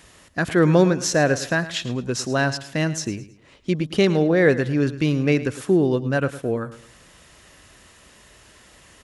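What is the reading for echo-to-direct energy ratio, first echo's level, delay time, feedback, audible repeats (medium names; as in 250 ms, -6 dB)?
-14.5 dB, -15.0 dB, 108 ms, 33%, 3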